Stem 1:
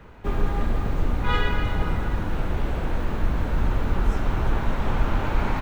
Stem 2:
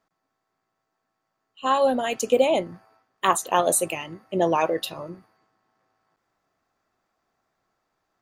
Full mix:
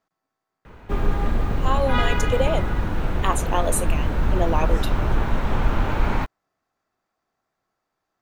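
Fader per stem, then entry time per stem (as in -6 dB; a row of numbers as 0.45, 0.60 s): +2.0, -3.5 dB; 0.65, 0.00 s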